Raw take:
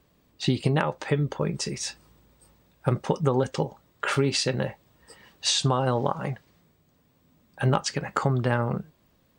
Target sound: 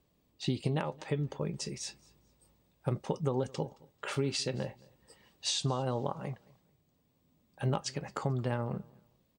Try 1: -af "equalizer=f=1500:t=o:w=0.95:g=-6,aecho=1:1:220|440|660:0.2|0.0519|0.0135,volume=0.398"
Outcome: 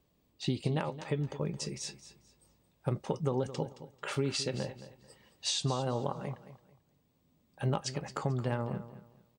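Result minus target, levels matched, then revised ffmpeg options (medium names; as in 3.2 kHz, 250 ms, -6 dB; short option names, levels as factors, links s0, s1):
echo-to-direct +10.5 dB
-af "equalizer=f=1500:t=o:w=0.95:g=-6,aecho=1:1:220|440:0.0596|0.0155,volume=0.398"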